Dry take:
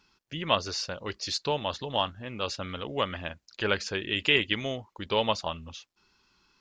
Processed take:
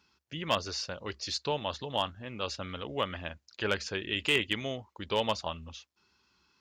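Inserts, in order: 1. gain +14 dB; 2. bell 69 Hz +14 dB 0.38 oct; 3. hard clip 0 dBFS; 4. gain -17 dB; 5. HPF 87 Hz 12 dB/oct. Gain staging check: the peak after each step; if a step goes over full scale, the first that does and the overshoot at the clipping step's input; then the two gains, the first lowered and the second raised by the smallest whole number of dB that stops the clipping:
+7.0, +7.0, 0.0, -17.0, -15.0 dBFS; step 1, 7.0 dB; step 1 +7 dB, step 4 -10 dB

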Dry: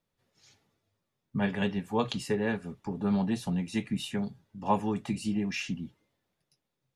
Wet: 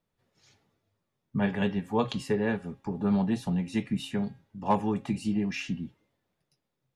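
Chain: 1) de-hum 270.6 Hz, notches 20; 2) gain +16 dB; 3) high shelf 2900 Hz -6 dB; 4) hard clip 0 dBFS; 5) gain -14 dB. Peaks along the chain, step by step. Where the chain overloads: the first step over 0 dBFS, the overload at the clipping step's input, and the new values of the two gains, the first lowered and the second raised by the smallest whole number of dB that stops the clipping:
-12.5, +3.5, +3.0, 0.0, -14.0 dBFS; step 2, 3.0 dB; step 2 +13 dB, step 5 -11 dB

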